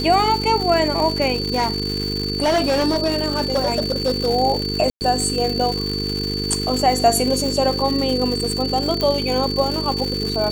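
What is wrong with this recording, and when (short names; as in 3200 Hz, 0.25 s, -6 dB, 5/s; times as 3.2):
buzz 50 Hz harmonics 9 -26 dBFS
crackle 300/s -23 dBFS
tone 4500 Hz -25 dBFS
1.33–4.29 clipped -14 dBFS
4.9–5.01 gap 0.109 s
9.01 pop -8 dBFS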